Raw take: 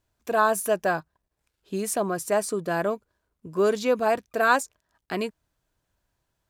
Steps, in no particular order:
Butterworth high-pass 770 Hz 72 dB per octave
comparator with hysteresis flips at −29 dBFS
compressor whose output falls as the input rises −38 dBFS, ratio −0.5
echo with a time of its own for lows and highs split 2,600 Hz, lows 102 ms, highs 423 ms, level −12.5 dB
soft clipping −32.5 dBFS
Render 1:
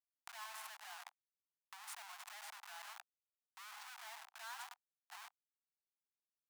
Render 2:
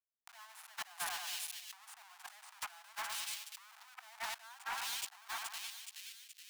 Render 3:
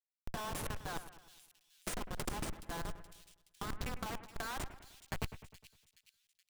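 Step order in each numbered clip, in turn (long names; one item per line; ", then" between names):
echo with a time of its own for lows and highs, then comparator with hysteresis, then compressor whose output falls as the input rises, then Butterworth high-pass, then soft clipping
comparator with hysteresis, then echo with a time of its own for lows and highs, then compressor whose output falls as the input rises, then Butterworth high-pass, then soft clipping
Butterworth high-pass, then comparator with hysteresis, then soft clipping, then compressor whose output falls as the input rises, then echo with a time of its own for lows and highs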